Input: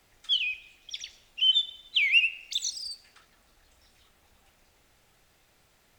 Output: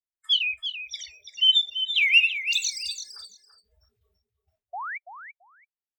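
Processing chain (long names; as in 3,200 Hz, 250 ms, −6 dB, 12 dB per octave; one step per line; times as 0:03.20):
noise gate with hold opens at −51 dBFS
sound drawn into the spectrogram rise, 0:04.73–0:04.98, 660–2,400 Hz −37 dBFS
noise reduction from a noise print of the clip's start 30 dB
on a send: repeating echo 335 ms, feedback 17%, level −9.5 dB
on the sum: level +4 dB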